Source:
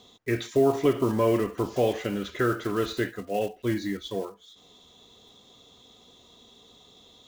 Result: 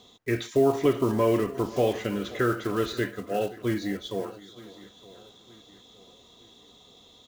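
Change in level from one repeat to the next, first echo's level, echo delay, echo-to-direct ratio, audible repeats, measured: no regular repeats, -19.5 dB, 524 ms, -16.5 dB, 3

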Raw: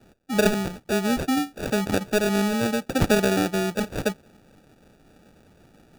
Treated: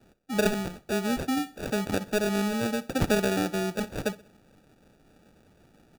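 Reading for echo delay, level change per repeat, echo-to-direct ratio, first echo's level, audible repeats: 64 ms, -8.5 dB, -19.0 dB, -19.5 dB, 2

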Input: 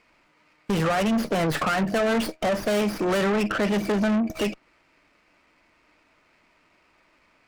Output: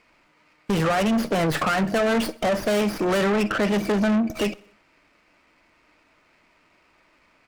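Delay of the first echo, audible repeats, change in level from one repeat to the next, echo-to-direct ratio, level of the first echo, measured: 65 ms, 3, -5.0 dB, -21.5 dB, -23.0 dB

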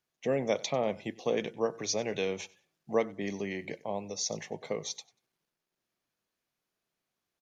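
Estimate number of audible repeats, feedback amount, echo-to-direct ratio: 2, 24%, -22.0 dB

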